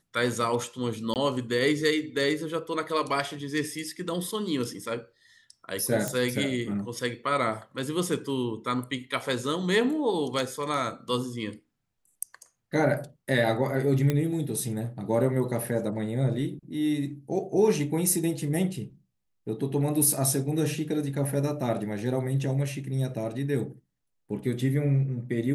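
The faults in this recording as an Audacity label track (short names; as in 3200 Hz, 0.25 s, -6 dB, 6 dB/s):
1.140000	1.160000	gap 18 ms
6.080000	6.080000	pop -14 dBFS
14.100000	14.100000	pop -13 dBFS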